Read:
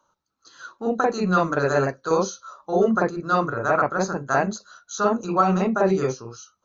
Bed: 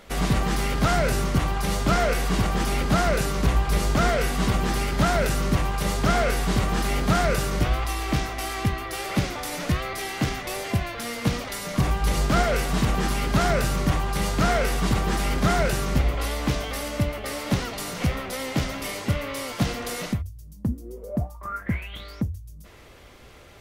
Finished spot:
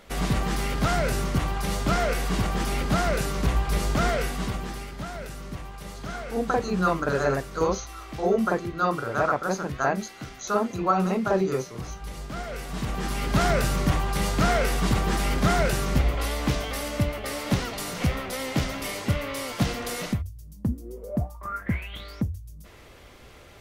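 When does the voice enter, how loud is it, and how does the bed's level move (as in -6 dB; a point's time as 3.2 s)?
5.50 s, -3.5 dB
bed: 4.15 s -2.5 dB
5.03 s -14 dB
12.33 s -14 dB
13.41 s -0.5 dB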